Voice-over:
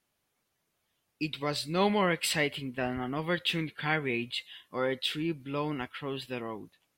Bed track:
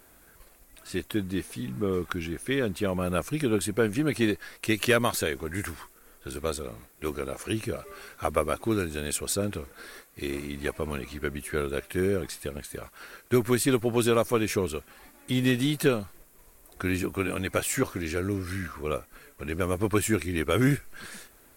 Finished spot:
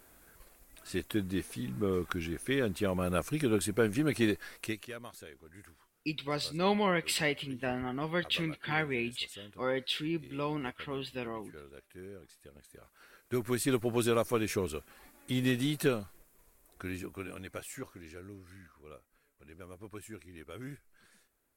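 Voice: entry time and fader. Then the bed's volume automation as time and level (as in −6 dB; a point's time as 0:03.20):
4.85 s, −2.0 dB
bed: 0:04.61 −3.5 dB
0:04.86 −21.5 dB
0:12.36 −21.5 dB
0:13.73 −5.5 dB
0:15.87 −5.5 dB
0:18.72 −21.5 dB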